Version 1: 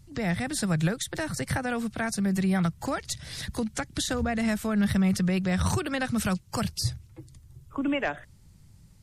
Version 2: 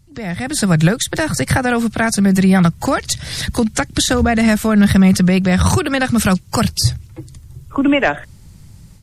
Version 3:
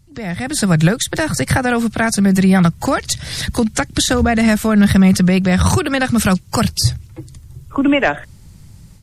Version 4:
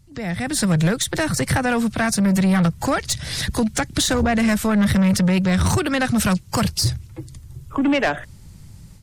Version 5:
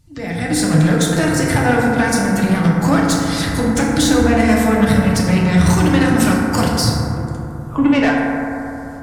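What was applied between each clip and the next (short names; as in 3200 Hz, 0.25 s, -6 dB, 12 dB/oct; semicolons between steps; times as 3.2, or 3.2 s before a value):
AGC gain up to 12.5 dB; gain +1.5 dB
nothing audible
soft clip -11.5 dBFS, distortion -13 dB; gain -1.5 dB
FDN reverb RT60 3.2 s, high-frequency decay 0.25×, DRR -4.5 dB; gain -1 dB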